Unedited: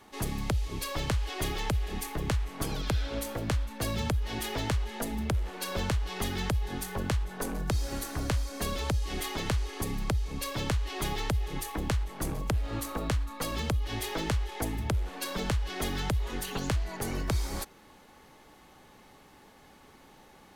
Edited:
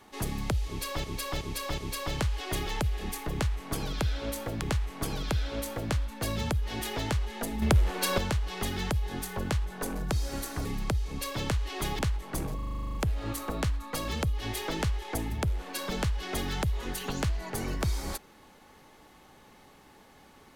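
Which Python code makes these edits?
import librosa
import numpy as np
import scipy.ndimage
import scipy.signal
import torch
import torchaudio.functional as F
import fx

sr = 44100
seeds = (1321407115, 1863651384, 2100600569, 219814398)

y = fx.edit(x, sr, fx.repeat(start_s=0.67, length_s=0.37, count=4),
    fx.repeat(start_s=2.2, length_s=1.3, count=2),
    fx.clip_gain(start_s=5.21, length_s=0.56, db=7.0),
    fx.cut(start_s=8.24, length_s=1.61),
    fx.cut(start_s=11.19, length_s=0.67),
    fx.stutter(start_s=12.42, slice_s=0.04, count=11), tone=tone)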